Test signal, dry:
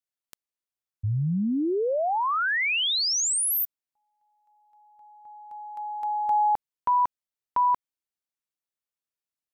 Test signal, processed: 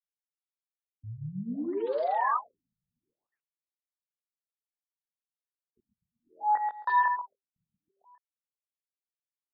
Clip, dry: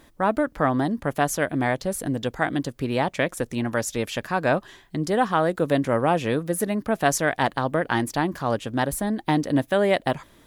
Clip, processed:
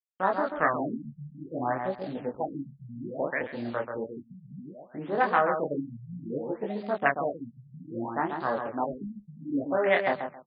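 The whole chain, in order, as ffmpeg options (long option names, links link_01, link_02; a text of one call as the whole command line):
ffmpeg -i in.wav -filter_complex "[0:a]lowpass=frequency=11000:width=0.5412,lowpass=frequency=11000:width=1.3066,acrossover=split=410|1700[link_01][link_02][link_03];[link_03]adynamicsmooth=sensitivity=1:basefreq=2900[link_04];[link_01][link_02][link_04]amix=inputs=3:normalize=0,afwtdn=0.0398,adynamicequalizer=threshold=0.00631:dfrequency=1900:dqfactor=2.1:tfrequency=1900:tqfactor=2.1:attack=5:release=100:ratio=0.375:range=4:mode=boostabove:tftype=bell,flanger=delay=20:depth=7.3:speed=0.45,aeval=exprs='val(0)*gte(abs(val(0)),0.00668)':channel_layout=same,aemphasis=mode=production:type=riaa,asplit=2[link_05][link_06];[link_06]adelay=135,lowpass=frequency=3900:poles=1,volume=-6dB,asplit=2[link_07][link_08];[link_08]adelay=135,lowpass=frequency=3900:poles=1,volume=0.21,asplit=2[link_09][link_10];[link_10]adelay=135,lowpass=frequency=3900:poles=1,volume=0.21[link_11];[link_05][link_07][link_09][link_11]amix=inputs=4:normalize=0,afftfilt=real='re*lt(b*sr/1024,200*pow(5000/200,0.5+0.5*sin(2*PI*0.62*pts/sr)))':imag='im*lt(b*sr/1024,200*pow(5000/200,0.5+0.5*sin(2*PI*0.62*pts/sr)))':win_size=1024:overlap=0.75" out.wav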